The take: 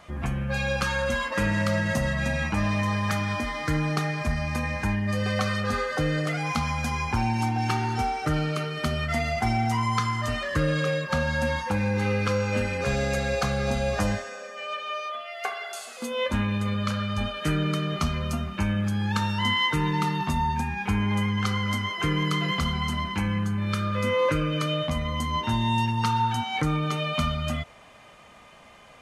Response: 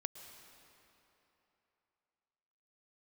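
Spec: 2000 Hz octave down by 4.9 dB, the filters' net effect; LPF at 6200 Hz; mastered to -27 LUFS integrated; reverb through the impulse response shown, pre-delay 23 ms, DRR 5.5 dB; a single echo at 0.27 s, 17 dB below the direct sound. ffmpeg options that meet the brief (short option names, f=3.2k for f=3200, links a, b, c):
-filter_complex "[0:a]lowpass=6.2k,equalizer=f=2k:t=o:g=-6,aecho=1:1:270:0.141,asplit=2[a][b];[1:a]atrim=start_sample=2205,adelay=23[c];[b][c]afir=irnorm=-1:irlink=0,volume=-3.5dB[d];[a][d]amix=inputs=2:normalize=0,volume=0.5dB"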